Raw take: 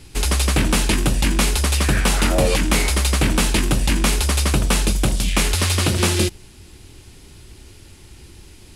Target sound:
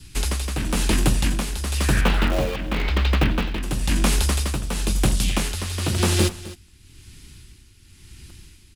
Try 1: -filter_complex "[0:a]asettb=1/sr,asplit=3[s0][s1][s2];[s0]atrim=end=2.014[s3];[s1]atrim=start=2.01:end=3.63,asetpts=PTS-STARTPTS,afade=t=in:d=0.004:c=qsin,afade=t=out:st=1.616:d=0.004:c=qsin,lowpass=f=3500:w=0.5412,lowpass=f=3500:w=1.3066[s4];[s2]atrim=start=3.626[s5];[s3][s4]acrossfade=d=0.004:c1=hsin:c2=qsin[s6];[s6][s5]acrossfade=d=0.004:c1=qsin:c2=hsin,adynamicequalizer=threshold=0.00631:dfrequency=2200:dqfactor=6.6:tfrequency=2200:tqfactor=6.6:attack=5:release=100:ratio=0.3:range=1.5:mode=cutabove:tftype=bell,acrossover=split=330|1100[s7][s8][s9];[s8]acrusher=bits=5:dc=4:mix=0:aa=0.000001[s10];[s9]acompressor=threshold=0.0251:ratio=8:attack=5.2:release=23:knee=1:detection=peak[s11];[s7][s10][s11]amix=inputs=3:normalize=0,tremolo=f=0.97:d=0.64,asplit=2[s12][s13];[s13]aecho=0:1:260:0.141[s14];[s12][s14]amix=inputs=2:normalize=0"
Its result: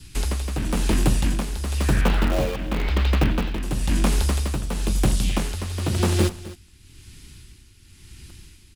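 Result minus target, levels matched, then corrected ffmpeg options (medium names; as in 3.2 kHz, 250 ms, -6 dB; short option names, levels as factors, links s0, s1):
compression: peak gain reduction +6.5 dB
-filter_complex "[0:a]asettb=1/sr,asplit=3[s0][s1][s2];[s0]atrim=end=2.014[s3];[s1]atrim=start=2.01:end=3.63,asetpts=PTS-STARTPTS,afade=t=in:d=0.004:c=qsin,afade=t=out:st=1.616:d=0.004:c=qsin,lowpass=f=3500:w=0.5412,lowpass=f=3500:w=1.3066[s4];[s2]atrim=start=3.626[s5];[s3][s4]acrossfade=d=0.004:c1=hsin:c2=qsin[s6];[s6][s5]acrossfade=d=0.004:c1=qsin:c2=hsin,adynamicequalizer=threshold=0.00631:dfrequency=2200:dqfactor=6.6:tfrequency=2200:tqfactor=6.6:attack=5:release=100:ratio=0.3:range=1.5:mode=cutabove:tftype=bell,acrossover=split=330|1100[s7][s8][s9];[s8]acrusher=bits=5:dc=4:mix=0:aa=0.000001[s10];[s9]acompressor=threshold=0.0596:ratio=8:attack=5.2:release=23:knee=1:detection=peak[s11];[s7][s10][s11]amix=inputs=3:normalize=0,tremolo=f=0.97:d=0.64,asplit=2[s12][s13];[s13]aecho=0:1:260:0.141[s14];[s12][s14]amix=inputs=2:normalize=0"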